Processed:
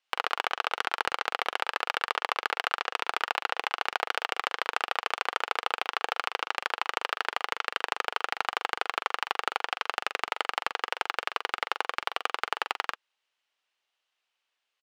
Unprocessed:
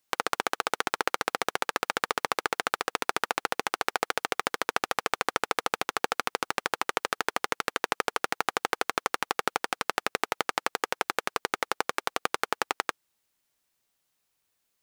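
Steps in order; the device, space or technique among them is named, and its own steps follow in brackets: megaphone (band-pass 620–4000 Hz; peaking EQ 2.9 kHz +6 dB 0.42 oct; hard clipper -10.5 dBFS, distortion -18 dB; doubling 43 ms -9 dB)

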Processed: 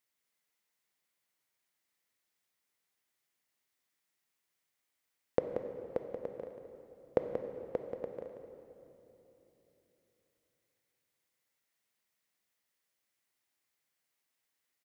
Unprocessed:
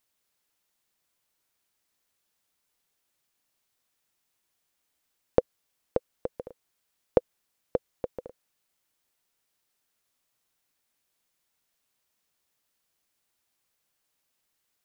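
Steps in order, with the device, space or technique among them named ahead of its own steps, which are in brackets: PA in a hall (high-pass 110 Hz 6 dB/octave; peaking EQ 2 kHz +6.5 dB 0.36 oct; delay 182 ms -8 dB; reverberation RT60 3.4 s, pre-delay 14 ms, DRR 6 dB); trim -7.5 dB

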